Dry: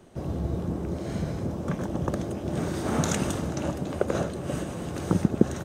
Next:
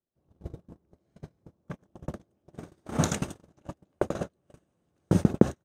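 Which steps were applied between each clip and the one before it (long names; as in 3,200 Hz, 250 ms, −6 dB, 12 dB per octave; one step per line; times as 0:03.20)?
noise gate −24 dBFS, range −42 dB
level +1.5 dB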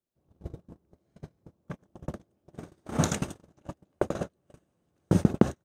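hard clipping −5.5 dBFS, distortion −18 dB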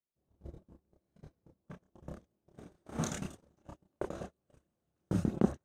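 multi-voice chorus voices 6, 1.5 Hz, delay 29 ms, depth 3 ms
level −6 dB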